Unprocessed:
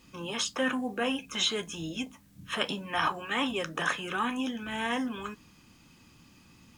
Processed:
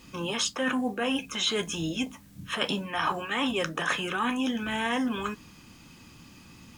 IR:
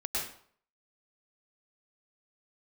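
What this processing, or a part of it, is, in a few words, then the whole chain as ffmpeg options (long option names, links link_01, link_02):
compression on the reversed sound: -af "areverse,acompressor=threshold=-31dB:ratio=6,areverse,volume=6.5dB"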